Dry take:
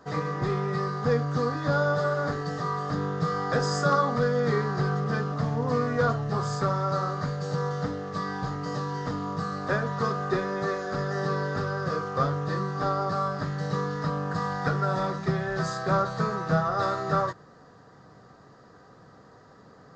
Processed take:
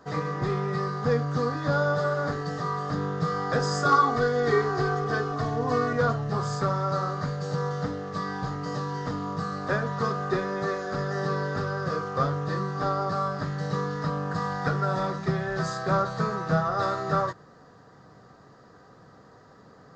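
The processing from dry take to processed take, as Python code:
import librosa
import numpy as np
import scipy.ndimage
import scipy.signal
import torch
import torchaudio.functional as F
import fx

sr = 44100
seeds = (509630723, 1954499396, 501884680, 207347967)

y = fx.comb(x, sr, ms=2.7, depth=0.92, at=(3.85, 5.93))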